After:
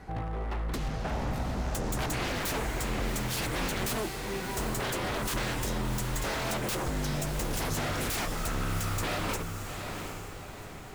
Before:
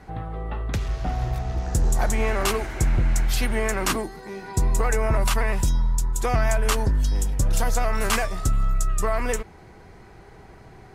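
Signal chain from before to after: wavefolder -26 dBFS; echo that smears into a reverb 741 ms, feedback 44%, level -6 dB; trim -1.5 dB

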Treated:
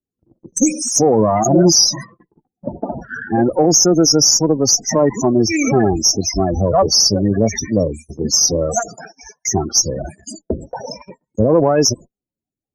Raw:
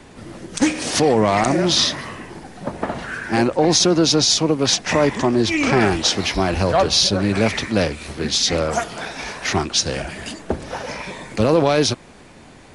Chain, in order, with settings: resonant high shelf 4.7 kHz +10.5 dB, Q 1.5; loudest bins only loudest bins 16; gate -32 dBFS, range -47 dB; Chebyshev shaper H 6 -33 dB, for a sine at 0 dBFS; 1.45–2.29 s: comb 5.9 ms, depth 86%; loudness maximiser +5 dB; trim -1.5 dB

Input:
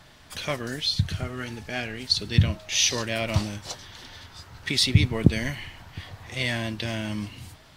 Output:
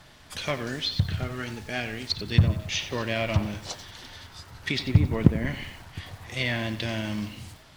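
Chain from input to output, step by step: short-mantissa float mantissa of 2-bit; low-pass that closes with the level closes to 1.1 kHz, closed at -17.5 dBFS; bit-crushed delay 90 ms, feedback 55%, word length 7-bit, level -12.5 dB

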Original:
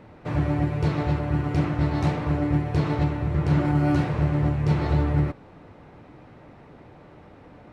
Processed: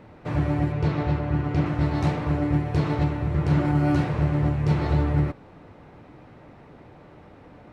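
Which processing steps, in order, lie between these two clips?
0.72–1.66 s: distance through air 74 m

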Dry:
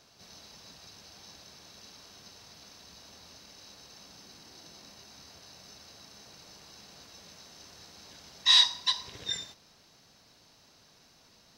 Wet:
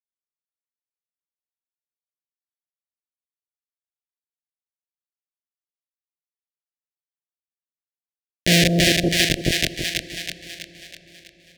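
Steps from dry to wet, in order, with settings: sorted samples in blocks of 256 samples; peaking EQ 3 kHz -12 dB 1.8 oct; in parallel at -7 dB: sample-rate reducer 1.3 kHz, jitter 0%; on the sum: rotary cabinet horn 7 Hz; hum notches 50/100/150/200 Hz; Schmitt trigger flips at -25 dBFS; frequency weighting D; two-band feedback delay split 790 Hz, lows 164 ms, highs 325 ms, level -4.5 dB; on a send at -22.5 dB: reverberation RT60 5.3 s, pre-delay 40 ms; on the sum: compression 2:1, threshold -47 dBFS, peak gain reduction 8.5 dB; elliptic band-stop 670–1700 Hz, stop band 40 dB; loudness maximiser +35.5 dB; trim -2.5 dB

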